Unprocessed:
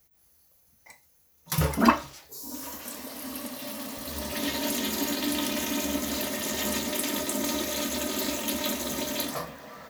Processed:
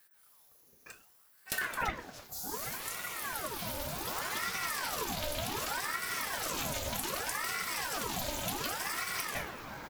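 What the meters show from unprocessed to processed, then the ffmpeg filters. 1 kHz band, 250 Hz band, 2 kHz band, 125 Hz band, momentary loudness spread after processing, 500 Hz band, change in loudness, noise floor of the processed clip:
-4.5 dB, -16.5 dB, -0.5 dB, -9.0 dB, 5 LU, -8.5 dB, -6.0 dB, -64 dBFS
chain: -filter_complex "[0:a]asplit=2[s0][s1];[s1]adelay=102,lowpass=f=2000:p=1,volume=0.178,asplit=2[s2][s3];[s3]adelay=102,lowpass=f=2000:p=1,volume=0.36,asplit=2[s4][s5];[s5]adelay=102,lowpass=f=2000:p=1,volume=0.36[s6];[s0][s2][s4][s6]amix=inputs=4:normalize=0,acompressor=threshold=0.0224:ratio=5,aeval=exprs='val(0)*sin(2*PI*1000*n/s+1000*0.7/0.66*sin(2*PI*0.66*n/s))':c=same,volume=1.41"

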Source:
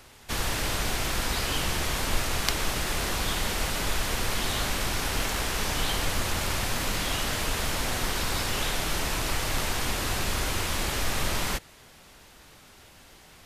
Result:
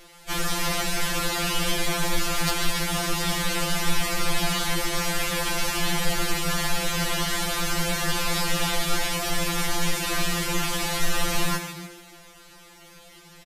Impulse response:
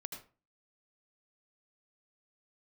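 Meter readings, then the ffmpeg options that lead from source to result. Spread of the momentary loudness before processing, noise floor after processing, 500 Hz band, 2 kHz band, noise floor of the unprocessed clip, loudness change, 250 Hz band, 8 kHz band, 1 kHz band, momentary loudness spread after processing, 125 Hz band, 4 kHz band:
1 LU, -49 dBFS, +3.0 dB, +3.0 dB, -53 dBFS, +3.0 dB, +5.0 dB, +3.0 dB, +3.0 dB, 1 LU, +1.5 dB, +3.0 dB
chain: -filter_complex "[0:a]asplit=7[s0][s1][s2][s3][s4][s5][s6];[s1]adelay=144,afreqshift=73,volume=0.335[s7];[s2]adelay=288,afreqshift=146,volume=0.172[s8];[s3]adelay=432,afreqshift=219,volume=0.0871[s9];[s4]adelay=576,afreqshift=292,volume=0.0447[s10];[s5]adelay=720,afreqshift=365,volume=0.0226[s11];[s6]adelay=864,afreqshift=438,volume=0.0116[s12];[s0][s7][s8][s9][s10][s11][s12]amix=inputs=7:normalize=0,acontrast=62,afftfilt=real='re*2.83*eq(mod(b,8),0)':imag='im*2.83*eq(mod(b,8),0)':win_size=2048:overlap=0.75,volume=0.841"

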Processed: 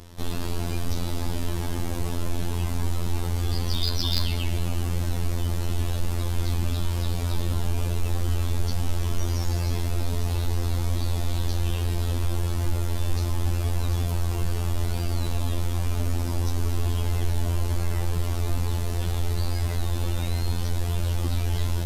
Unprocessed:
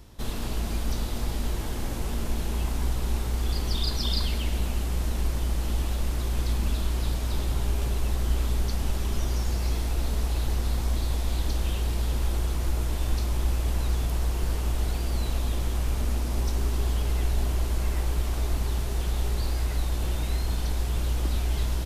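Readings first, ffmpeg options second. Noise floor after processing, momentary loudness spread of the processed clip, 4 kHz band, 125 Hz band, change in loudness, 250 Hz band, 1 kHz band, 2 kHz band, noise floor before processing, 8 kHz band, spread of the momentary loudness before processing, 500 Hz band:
-27 dBFS, 3 LU, +1.5 dB, +3.5 dB, +1.0 dB, +2.5 dB, +1.5 dB, +1.0 dB, -30 dBFS, +1.0 dB, 3 LU, +2.0 dB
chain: -af "afftfilt=real='hypot(re,im)*cos(PI*b)':imag='0':win_size=2048:overlap=0.75,aeval=exprs='0.299*(cos(1*acos(clip(val(0)/0.299,-1,1)))-cos(1*PI/2))+0.0376*(cos(4*acos(clip(val(0)/0.299,-1,1)))-cos(4*PI/2))':c=same,volume=2.82"

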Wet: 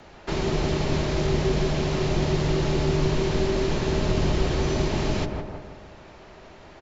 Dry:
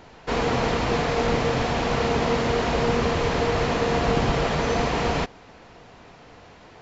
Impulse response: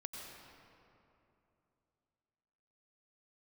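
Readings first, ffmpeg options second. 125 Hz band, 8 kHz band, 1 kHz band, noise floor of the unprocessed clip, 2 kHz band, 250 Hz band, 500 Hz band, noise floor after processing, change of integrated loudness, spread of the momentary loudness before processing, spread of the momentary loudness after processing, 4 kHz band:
+3.0 dB, no reading, -8.0 dB, -49 dBFS, -6.0 dB, 0.0 dB, -2.5 dB, -47 dBFS, -1.5 dB, 2 LU, 8 LU, -2.0 dB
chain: -filter_complex "[0:a]asplit=2[s0][s1];[s1]adelay=162,lowpass=f=1300:p=1,volume=0.562,asplit=2[s2][s3];[s3]adelay=162,lowpass=f=1300:p=1,volume=0.51,asplit=2[s4][s5];[s5]adelay=162,lowpass=f=1300:p=1,volume=0.51,asplit=2[s6][s7];[s7]adelay=162,lowpass=f=1300:p=1,volume=0.51,asplit=2[s8][s9];[s9]adelay=162,lowpass=f=1300:p=1,volume=0.51,asplit=2[s10][s11];[s11]adelay=162,lowpass=f=1300:p=1,volume=0.51[s12];[s0][s2][s4][s6][s8][s10][s12]amix=inputs=7:normalize=0,afreqshift=-85,acrossover=split=410|3000[s13][s14][s15];[s14]acompressor=threshold=0.02:ratio=4[s16];[s13][s16][s15]amix=inputs=3:normalize=0"

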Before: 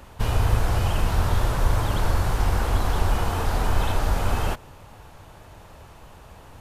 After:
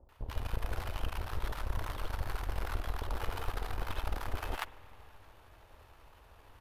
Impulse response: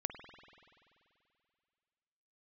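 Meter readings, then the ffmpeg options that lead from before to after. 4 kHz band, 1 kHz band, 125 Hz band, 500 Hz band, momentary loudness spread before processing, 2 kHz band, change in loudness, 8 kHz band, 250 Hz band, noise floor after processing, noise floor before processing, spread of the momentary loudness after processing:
-12.0 dB, -13.5 dB, -16.5 dB, -14.5 dB, 3 LU, -11.0 dB, -15.0 dB, -16.5 dB, -17.0 dB, -60 dBFS, -47 dBFS, 20 LU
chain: -filter_complex "[0:a]equalizer=f=7400:w=1.2:g=-8,areverse,acompressor=threshold=0.0398:ratio=6,areverse,aeval=exprs='0.119*(cos(1*acos(clip(val(0)/0.119,-1,1)))-cos(1*PI/2))+0.0335*(cos(3*acos(clip(val(0)/0.119,-1,1)))-cos(3*PI/2))+0.0075*(cos(4*acos(clip(val(0)/0.119,-1,1)))-cos(4*PI/2))+0.000944*(cos(5*acos(clip(val(0)/0.119,-1,1)))-cos(5*PI/2))':c=same,equalizer=f=170:w=1:g=-11.5,acrossover=split=700[s0][s1];[s1]adelay=90[s2];[s0][s2]amix=inputs=2:normalize=0,asplit=2[s3][s4];[1:a]atrim=start_sample=2205[s5];[s4][s5]afir=irnorm=-1:irlink=0,volume=0.398[s6];[s3][s6]amix=inputs=2:normalize=0,volume=1.26"

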